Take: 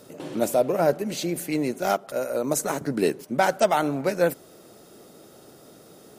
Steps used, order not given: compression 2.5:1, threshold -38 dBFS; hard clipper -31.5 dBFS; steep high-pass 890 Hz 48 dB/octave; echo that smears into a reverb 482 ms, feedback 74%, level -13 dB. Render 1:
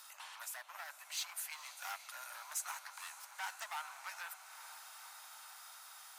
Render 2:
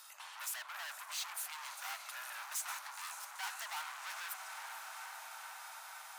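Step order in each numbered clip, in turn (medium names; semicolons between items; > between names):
compression > echo that smears into a reverb > hard clipper > steep high-pass; echo that smears into a reverb > hard clipper > compression > steep high-pass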